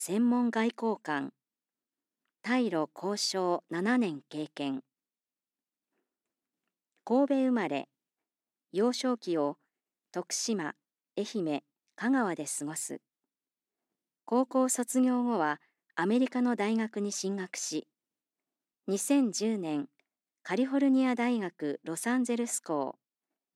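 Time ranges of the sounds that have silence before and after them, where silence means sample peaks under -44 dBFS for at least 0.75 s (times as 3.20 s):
2.44–4.80 s
7.07–7.84 s
8.74–12.97 s
14.28–17.83 s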